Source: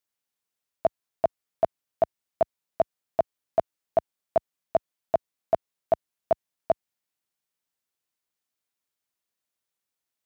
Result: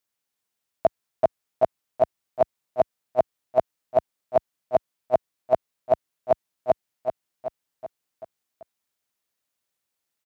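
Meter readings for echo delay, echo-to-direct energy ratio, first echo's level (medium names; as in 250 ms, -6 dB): 382 ms, -5.5 dB, -7.0 dB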